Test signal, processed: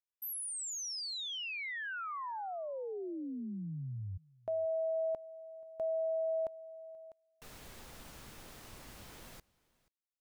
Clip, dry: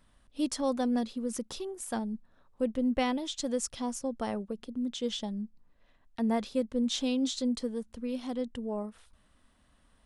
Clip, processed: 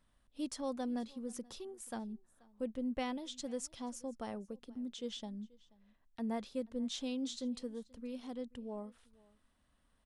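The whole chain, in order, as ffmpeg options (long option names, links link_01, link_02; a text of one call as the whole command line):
ffmpeg -i in.wav -af "aecho=1:1:482:0.0631,volume=-9dB" out.wav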